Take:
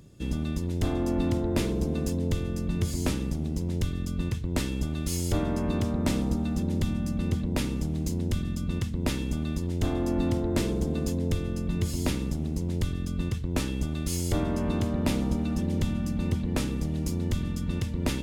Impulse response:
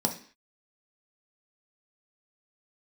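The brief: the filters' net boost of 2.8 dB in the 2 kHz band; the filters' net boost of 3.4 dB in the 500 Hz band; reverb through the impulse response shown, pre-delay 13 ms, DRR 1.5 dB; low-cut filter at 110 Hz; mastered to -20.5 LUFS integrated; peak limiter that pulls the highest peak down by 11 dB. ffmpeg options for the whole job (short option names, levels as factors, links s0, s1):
-filter_complex "[0:a]highpass=110,equalizer=f=500:t=o:g=4.5,equalizer=f=2000:t=o:g=3.5,alimiter=limit=0.0841:level=0:latency=1,asplit=2[s0][s1];[1:a]atrim=start_sample=2205,adelay=13[s2];[s1][s2]afir=irnorm=-1:irlink=0,volume=0.335[s3];[s0][s3]amix=inputs=2:normalize=0,volume=1.41"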